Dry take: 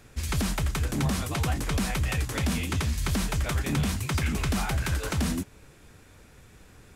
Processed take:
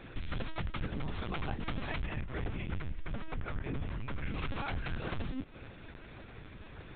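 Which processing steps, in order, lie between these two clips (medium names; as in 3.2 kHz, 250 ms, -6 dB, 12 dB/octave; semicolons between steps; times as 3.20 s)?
peaking EQ 190 Hz -4 dB 0.27 oct; compression 10:1, threshold -36 dBFS, peak gain reduction 13.5 dB; LPC vocoder at 8 kHz pitch kept; 2.06–4.28 s: distance through air 360 m; trim +3.5 dB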